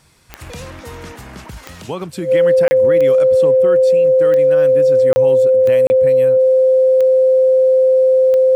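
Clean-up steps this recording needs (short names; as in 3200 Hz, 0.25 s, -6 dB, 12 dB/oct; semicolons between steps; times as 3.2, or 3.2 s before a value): de-click; notch 520 Hz, Q 30; interpolate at 2.68/5.13/5.87, 30 ms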